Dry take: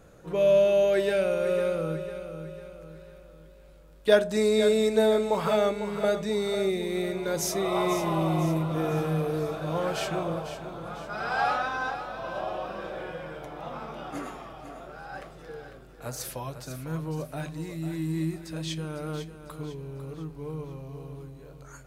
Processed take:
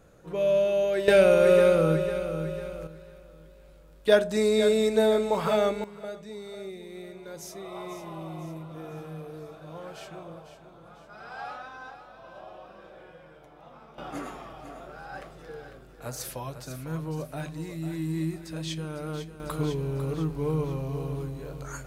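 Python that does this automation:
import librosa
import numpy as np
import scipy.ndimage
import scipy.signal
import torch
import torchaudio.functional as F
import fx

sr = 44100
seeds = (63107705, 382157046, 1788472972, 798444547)

y = fx.gain(x, sr, db=fx.steps((0.0, -3.0), (1.08, 7.5), (2.87, 0.0), (5.84, -12.5), (13.98, -0.5), (19.4, 8.5)))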